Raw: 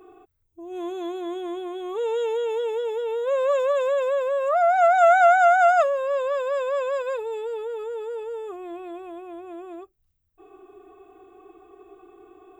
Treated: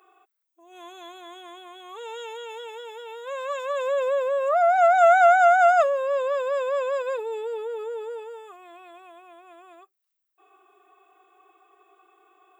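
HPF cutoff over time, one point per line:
3.62 s 1000 Hz
4.13 s 280 Hz
5.32 s 280 Hz
5.76 s 85 Hz
6.41 s 280 Hz
7.89 s 280 Hz
8.51 s 960 Hz

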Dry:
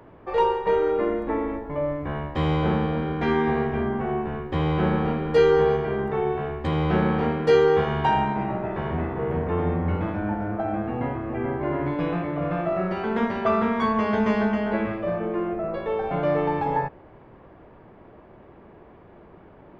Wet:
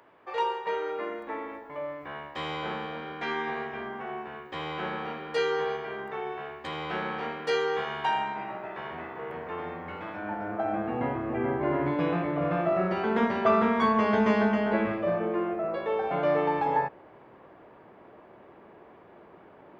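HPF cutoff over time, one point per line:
HPF 6 dB/oct
10.05 s 1500 Hz
10.44 s 590 Hz
11.23 s 170 Hz
15.08 s 170 Hz
15.54 s 390 Hz

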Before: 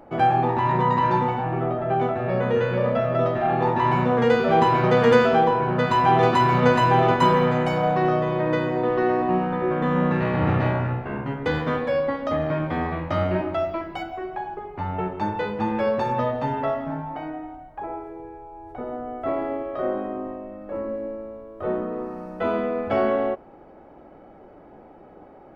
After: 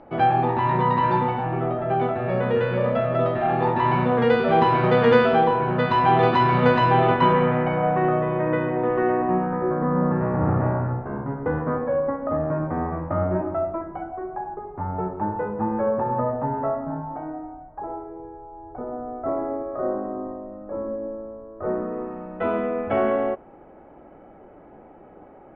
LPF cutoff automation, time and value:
LPF 24 dB/oct
6.87 s 4300 Hz
7.68 s 2400 Hz
9.11 s 2400 Hz
9.85 s 1400 Hz
21.49 s 1400 Hz
22.12 s 2900 Hz

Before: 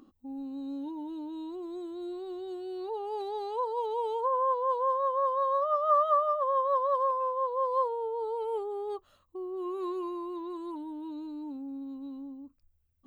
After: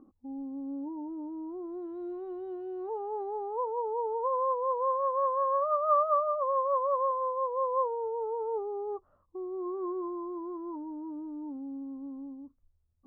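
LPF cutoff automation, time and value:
LPF 24 dB/oct
1.49 s 1100 Hz
1.95 s 1900 Hz
2.6 s 1900 Hz
3.62 s 1100 Hz
4.68 s 1100 Hz
5.59 s 1700 Hz
6.26 s 1200 Hz

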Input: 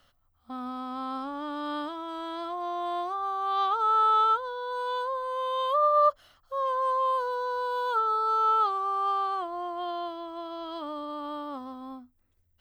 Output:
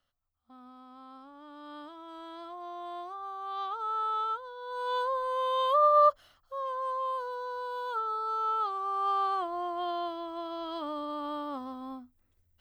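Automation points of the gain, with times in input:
1.33 s -16 dB
2.15 s -9 dB
4.55 s -9 dB
4.96 s +0.5 dB
6.02 s +0.5 dB
6.63 s -6.5 dB
8.59 s -6.5 dB
9.25 s 0 dB

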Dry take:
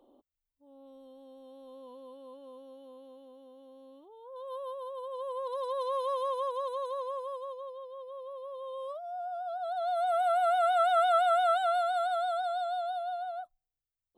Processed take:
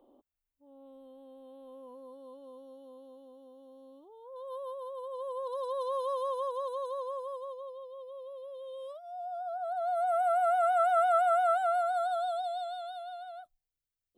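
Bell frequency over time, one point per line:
bell -14.5 dB 0.76 oct
1.62 s 5300 Hz
2.29 s 2200 Hz
7.38 s 2200 Hz
9.02 s 880 Hz
9.57 s 3600 Hz
11.82 s 3600 Hz
12.78 s 940 Hz

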